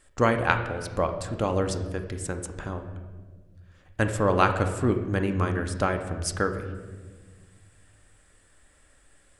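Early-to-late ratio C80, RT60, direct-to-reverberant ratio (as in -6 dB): 10.5 dB, 1.5 s, 5.5 dB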